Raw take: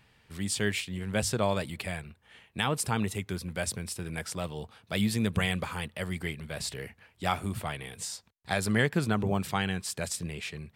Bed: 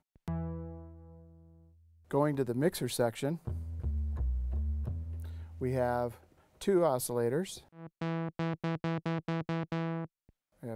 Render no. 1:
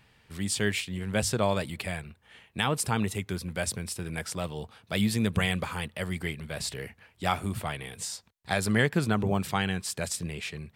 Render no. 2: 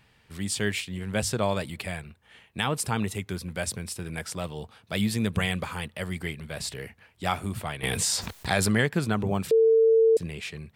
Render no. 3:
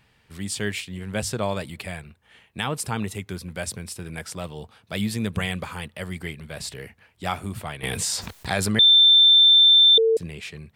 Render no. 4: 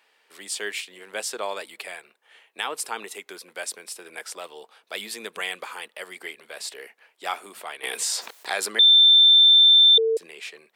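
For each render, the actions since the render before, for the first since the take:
trim +1.5 dB
7.83–8.81 s: level flattener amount 70%; 9.51–10.17 s: bleep 449 Hz -15.5 dBFS
8.79–9.98 s: bleep 3.56 kHz -10.5 dBFS
dynamic bell 590 Hz, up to -4 dB, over -43 dBFS, Q 2.2; high-pass 400 Hz 24 dB/octave

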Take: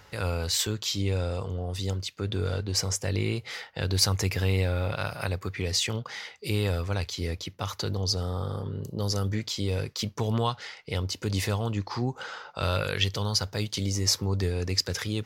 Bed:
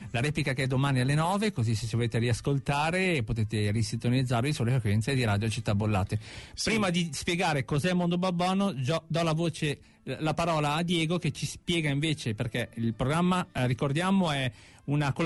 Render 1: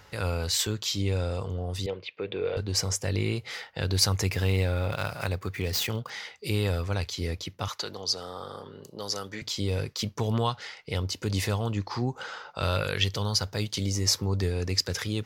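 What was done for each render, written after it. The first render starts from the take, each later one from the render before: 1.86–2.57 s: cabinet simulation 240–3300 Hz, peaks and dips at 250 Hz -9 dB, 470 Hz +8 dB, 1.4 kHz -5 dB, 2.4 kHz +8 dB; 4.32–6.10 s: dead-time distortion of 0.051 ms; 7.68–9.42 s: frequency weighting A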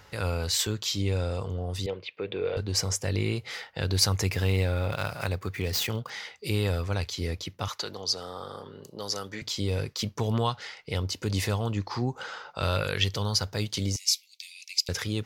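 13.96–14.89 s: steep high-pass 2.2 kHz 96 dB/octave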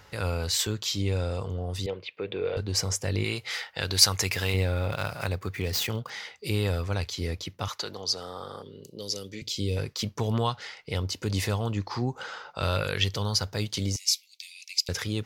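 3.24–4.54 s: tilt shelf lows -5.5 dB, about 630 Hz; 8.62–9.77 s: high-order bell 1.1 kHz -15 dB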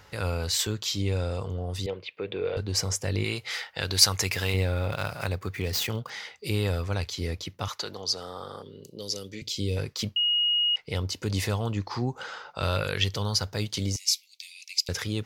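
10.16–10.76 s: bleep 2.88 kHz -21 dBFS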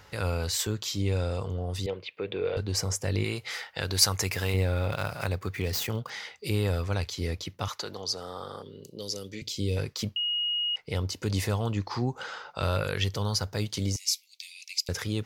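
dynamic bell 3.4 kHz, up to -5 dB, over -37 dBFS, Q 0.76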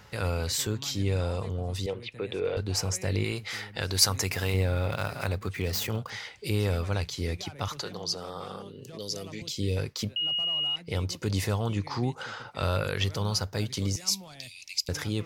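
add bed -19.5 dB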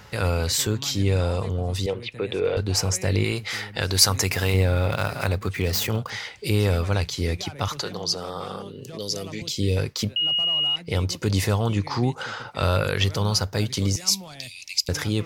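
trim +6 dB; peak limiter -2 dBFS, peak gain reduction 2 dB

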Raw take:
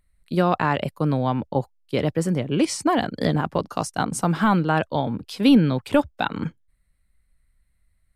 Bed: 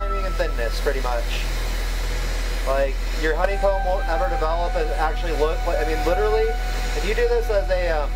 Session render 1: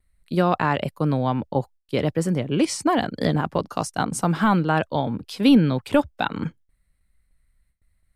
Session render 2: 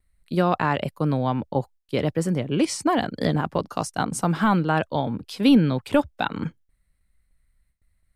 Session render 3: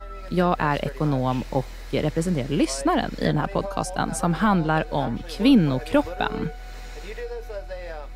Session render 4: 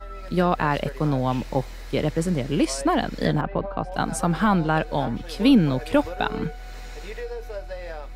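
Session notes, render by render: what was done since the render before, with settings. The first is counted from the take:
gate with hold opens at -58 dBFS
trim -1 dB
add bed -13.5 dB
3.41–3.92 s: distance through air 440 m

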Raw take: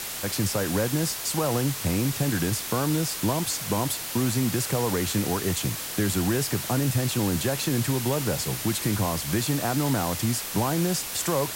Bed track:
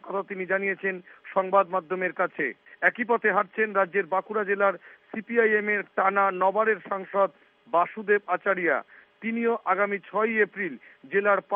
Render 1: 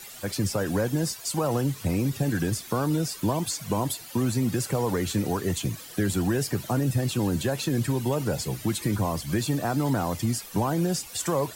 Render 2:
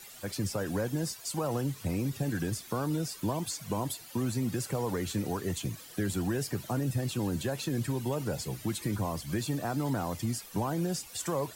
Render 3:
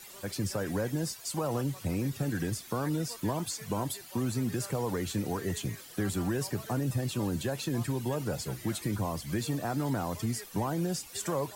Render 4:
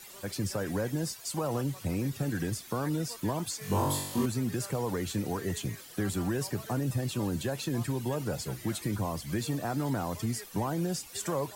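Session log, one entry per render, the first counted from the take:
noise reduction 14 dB, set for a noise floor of -34 dBFS
trim -6 dB
add bed track -27 dB
3.59–4.26 s: flutter echo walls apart 3.6 m, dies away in 0.76 s

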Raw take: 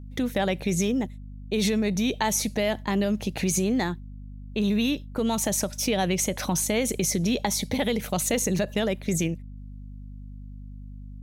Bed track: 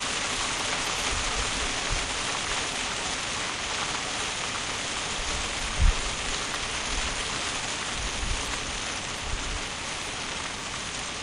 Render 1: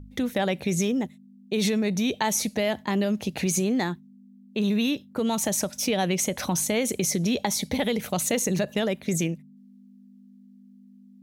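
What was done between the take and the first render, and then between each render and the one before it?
de-hum 50 Hz, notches 3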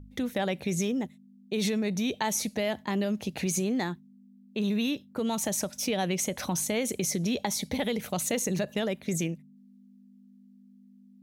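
trim -4 dB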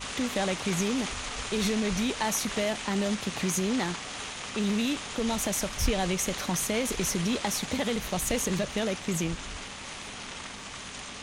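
add bed track -7.5 dB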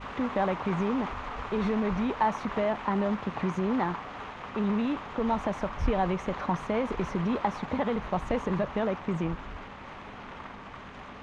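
low-pass 1.6 kHz 12 dB/octave; dynamic bell 1 kHz, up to +8 dB, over -49 dBFS, Q 1.7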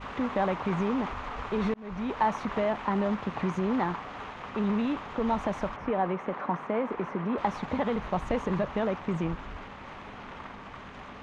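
1.74–2.20 s: fade in; 5.76–7.38 s: three-band isolator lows -23 dB, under 160 Hz, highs -15 dB, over 2.5 kHz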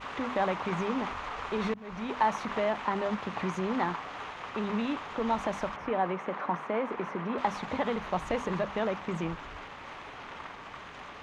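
tilt EQ +1.5 dB/octave; hum notches 50/100/150/200/250 Hz

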